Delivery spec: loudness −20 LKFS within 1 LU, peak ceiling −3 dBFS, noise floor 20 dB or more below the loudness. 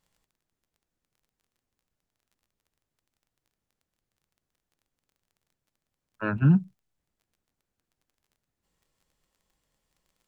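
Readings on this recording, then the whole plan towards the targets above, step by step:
crackle rate 18 per second; integrated loudness −24.5 LKFS; sample peak −10.5 dBFS; target loudness −20.0 LKFS
→ click removal
level +4.5 dB

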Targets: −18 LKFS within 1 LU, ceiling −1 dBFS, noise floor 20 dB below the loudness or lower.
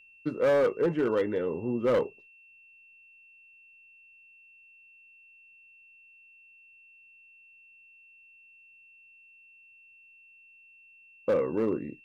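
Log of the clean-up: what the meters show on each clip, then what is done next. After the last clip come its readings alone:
share of clipped samples 0.9%; peaks flattened at −20.0 dBFS; interfering tone 2,700 Hz; level of the tone −54 dBFS; integrated loudness −28.0 LKFS; sample peak −20.0 dBFS; target loudness −18.0 LKFS
→ clipped peaks rebuilt −20 dBFS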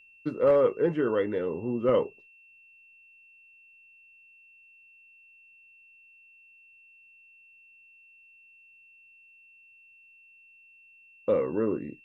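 share of clipped samples 0.0%; interfering tone 2,700 Hz; level of the tone −54 dBFS
→ notch filter 2,700 Hz, Q 30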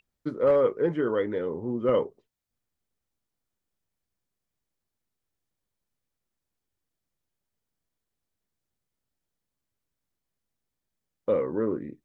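interfering tone none found; integrated loudness −26.5 LKFS; sample peak −11.5 dBFS; target loudness −18.0 LKFS
→ level +8.5 dB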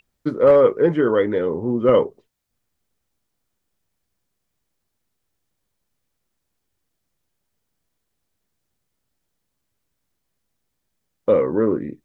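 integrated loudness −18.0 LKFS; sample peak −3.0 dBFS; background noise floor −77 dBFS

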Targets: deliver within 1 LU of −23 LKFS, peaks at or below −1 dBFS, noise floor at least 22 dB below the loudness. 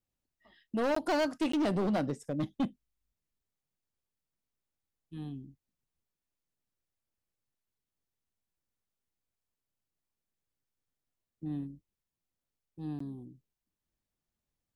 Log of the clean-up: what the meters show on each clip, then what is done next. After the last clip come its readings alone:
share of clipped samples 1.4%; peaks flattened at −26.0 dBFS; number of dropouts 3; longest dropout 14 ms; integrated loudness −34.0 LKFS; sample peak −26.0 dBFS; target loudness −23.0 LKFS
→ clipped peaks rebuilt −26 dBFS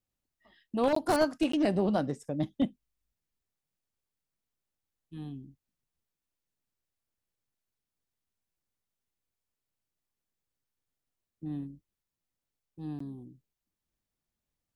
share of clipped samples 0.0%; number of dropouts 3; longest dropout 14 ms
→ repair the gap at 0:00.95/0:01.52/0:12.99, 14 ms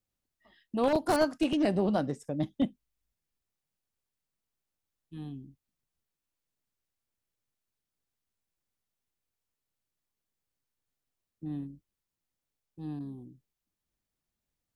number of dropouts 0; integrated loudness −30.5 LKFS; sample peak −17.0 dBFS; target loudness −23.0 LKFS
→ level +7.5 dB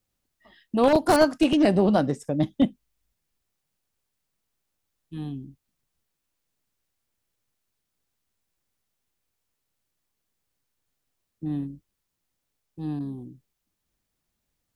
integrated loudness −23.0 LKFS; sample peak −9.5 dBFS; background noise floor −81 dBFS

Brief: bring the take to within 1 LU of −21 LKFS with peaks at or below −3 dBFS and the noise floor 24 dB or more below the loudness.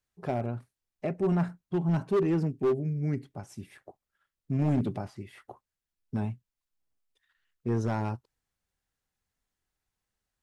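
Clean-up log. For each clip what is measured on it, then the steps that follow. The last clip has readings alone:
share of clipped samples 1.1%; peaks flattened at −21.0 dBFS; integrated loudness −30.5 LKFS; sample peak −21.0 dBFS; target loudness −21.0 LKFS
→ clipped peaks rebuilt −21 dBFS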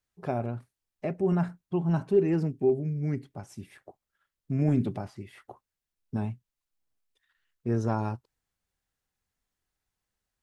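share of clipped samples 0.0%; integrated loudness −29.5 LKFS; sample peak −12.5 dBFS; target loudness −21.0 LKFS
→ level +8.5 dB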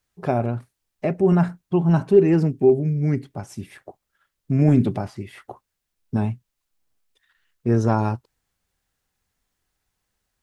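integrated loudness −21.0 LKFS; sample peak −4.0 dBFS; background noise floor −80 dBFS

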